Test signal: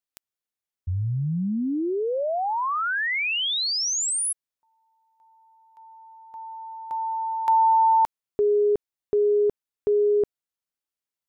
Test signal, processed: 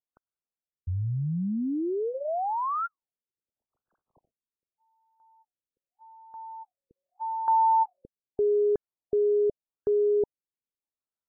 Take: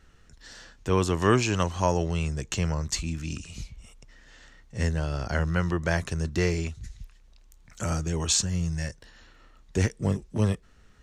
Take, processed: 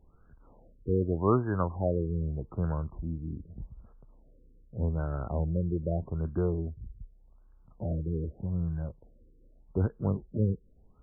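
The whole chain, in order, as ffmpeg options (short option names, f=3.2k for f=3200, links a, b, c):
-af "adynamicsmooth=sensitivity=1.5:basefreq=7.7k,afftfilt=real='re*lt(b*sr/1024,510*pow(1700/510,0.5+0.5*sin(2*PI*0.83*pts/sr)))':imag='im*lt(b*sr/1024,510*pow(1700/510,0.5+0.5*sin(2*PI*0.83*pts/sr)))':win_size=1024:overlap=0.75,volume=-3dB"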